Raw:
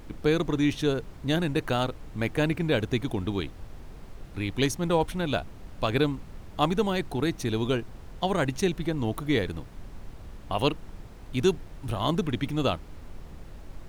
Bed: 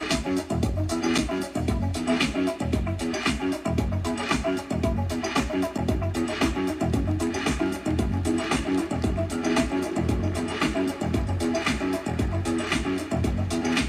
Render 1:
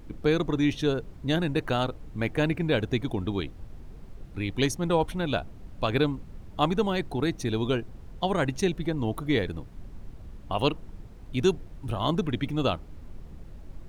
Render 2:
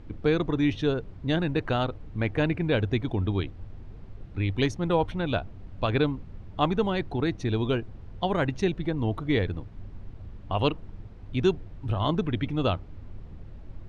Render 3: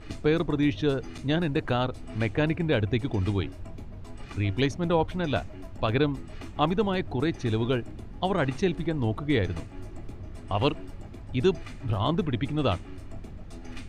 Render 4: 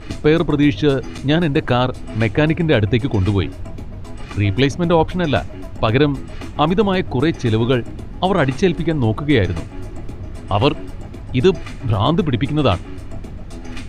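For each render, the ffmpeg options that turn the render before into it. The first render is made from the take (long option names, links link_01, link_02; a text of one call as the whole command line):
ffmpeg -i in.wav -af "afftdn=noise_reduction=7:noise_floor=-45" out.wav
ffmpeg -i in.wav -af "lowpass=4000,equalizer=frequency=97:width_type=o:width=0.31:gain=9" out.wav
ffmpeg -i in.wav -i bed.wav -filter_complex "[1:a]volume=-20dB[link_01];[0:a][link_01]amix=inputs=2:normalize=0" out.wav
ffmpeg -i in.wav -af "volume=10dB,alimiter=limit=-2dB:level=0:latency=1" out.wav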